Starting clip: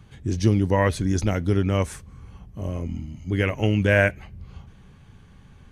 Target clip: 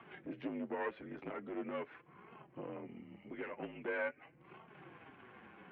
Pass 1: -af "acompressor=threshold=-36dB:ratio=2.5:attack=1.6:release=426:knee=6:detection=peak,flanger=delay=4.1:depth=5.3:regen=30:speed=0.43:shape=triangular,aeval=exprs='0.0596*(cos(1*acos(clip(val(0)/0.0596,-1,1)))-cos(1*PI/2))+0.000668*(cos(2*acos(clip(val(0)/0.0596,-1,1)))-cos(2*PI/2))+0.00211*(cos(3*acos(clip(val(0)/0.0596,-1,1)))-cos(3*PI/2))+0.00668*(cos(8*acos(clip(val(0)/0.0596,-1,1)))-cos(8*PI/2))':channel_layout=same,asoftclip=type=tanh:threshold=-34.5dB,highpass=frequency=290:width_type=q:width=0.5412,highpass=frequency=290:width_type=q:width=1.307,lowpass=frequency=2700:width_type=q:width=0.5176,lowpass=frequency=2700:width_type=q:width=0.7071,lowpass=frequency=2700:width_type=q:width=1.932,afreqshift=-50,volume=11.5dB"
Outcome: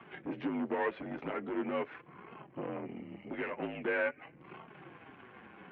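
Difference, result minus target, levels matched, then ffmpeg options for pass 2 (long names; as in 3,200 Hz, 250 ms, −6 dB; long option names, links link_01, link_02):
downward compressor: peak gain reduction −7 dB
-af "acompressor=threshold=-47.5dB:ratio=2.5:attack=1.6:release=426:knee=6:detection=peak,flanger=delay=4.1:depth=5.3:regen=30:speed=0.43:shape=triangular,aeval=exprs='0.0596*(cos(1*acos(clip(val(0)/0.0596,-1,1)))-cos(1*PI/2))+0.000668*(cos(2*acos(clip(val(0)/0.0596,-1,1)))-cos(2*PI/2))+0.00211*(cos(3*acos(clip(val(0)/0.0596,-1,1)))-cos(3*PI/2))+0.00668*(cos(8*acos(clip(val(0)/0.0596,-1,1)))-cos(8*PI/2))':channel_layout=same,asoftclip=type=tanh:threshold=-34.5dB,highpass=frequency=290:width_type=q:width=0.5412,highpass=frequency=290:width_type=q:width=1.307,lowpass=frequency=2700:width_type=q:width=0.5176,lowpass=frequency=2700:width_type=q:width=0.7071,lowpass=frequency=2700:width_type=q:width=1.932,afreqshift=-50,volume=11.5dB"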